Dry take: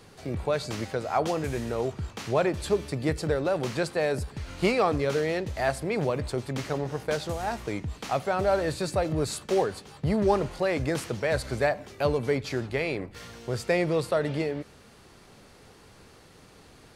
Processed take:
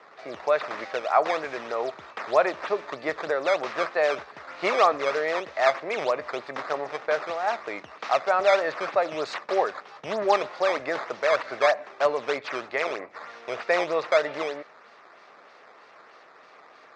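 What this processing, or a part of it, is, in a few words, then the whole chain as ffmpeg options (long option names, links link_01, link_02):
circuit-bent sampling toy: -af "acrusher=samples=9:mix=1:aa=0.000001:lfo=1:lforange=14.4:lforate=3.2,highpass=600,equalizer=frequency=630:width_type=q:width=4:gain=5,equalizer=frequency=1200:width_type=q:width=4:gain=6,equalizer=frequency=1900:width_type=q:width=4:gain=3,equalizer=frequency=3100:width_type=q:width=4:gain=-6,equalizer=frequency=4400:width_type=q:width=4:gain=-4,lowpass=frequency=4800:width=0.5412,lowpass=frequency=4800:width=1.3066,volume=4dB"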